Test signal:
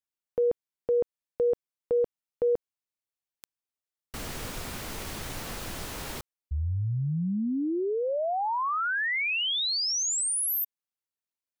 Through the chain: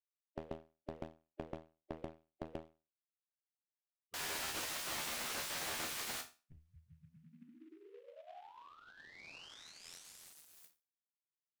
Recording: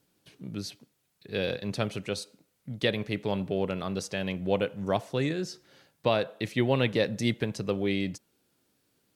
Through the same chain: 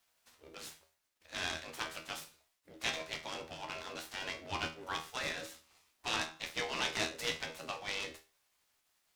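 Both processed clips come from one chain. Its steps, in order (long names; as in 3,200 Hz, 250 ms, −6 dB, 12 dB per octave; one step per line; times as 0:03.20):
gate on every frequency bin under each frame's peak −15 dB weak
tuned comb filter 80 Hz, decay 0.31 s, harmonics all, mix 90%
short delay modulated by noise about 1,900 Hz, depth 0.032 ms
level +8.5 dB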